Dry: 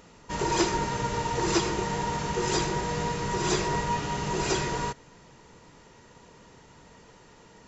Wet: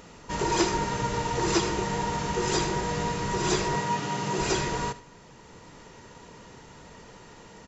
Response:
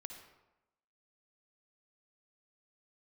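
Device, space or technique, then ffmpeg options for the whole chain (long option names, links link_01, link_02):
ducked reverb: -filter_complex "[0:a]asplit=3[link_01][link_02][link_03];[1:a]atrim=start_sample=2205[link_04];[link_02][link_04]afir=irnorm=-1:irlink=0[link_05];[link_03]apad=whole_len=338436[link_06];[link_05][link_06]sidechaincompress=threshold=-45dB:ratio=8:attack=16:release=610,volume=2.5dB[link_07];[link_01][link_07]amix=inputs=2:normalize=0,asettb=1/sr,asplit=3[link_08][link_09][link_10];[link_08]atrim=end=3.754[link_11];[link_09]atrim=start=3.75:end=4.39,asetpts=PTS-STARTPTS,afade=type=in:duration=0.004:curve=qsin,afade=type=out:start_time=0.636:duration=0.004:curve=qsin,highpass=frequency=110:width=0.5412,highpass=frequency=110:width=1.3066[link_12];[link_10]atrim=start=4.386[link_13];[link_11][link_12]acrossfade=duration=0.004:curve1=hsin:curve2=qsin[link_14];[link_14][link_13]acrossfade=duration=0.004:curve1=qsin:curve2=hsin,aecho=1:1:77:0.158"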